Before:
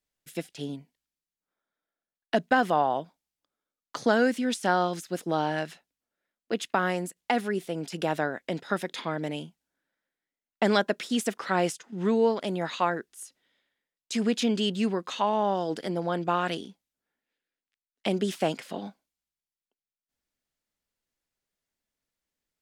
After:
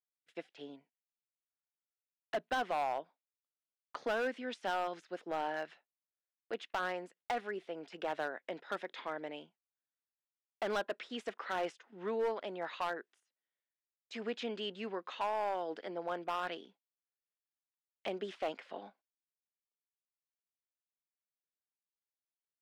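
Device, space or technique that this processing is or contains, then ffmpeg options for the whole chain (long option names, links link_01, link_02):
walkie-talkie: -af "highpass=440,lowpass=2700,asoftclip=type=hard:threshold=-22.5dB,agate=range=-15dB:threshold=-58dB:ratio=16:detection=peak,volume=-6.5dB"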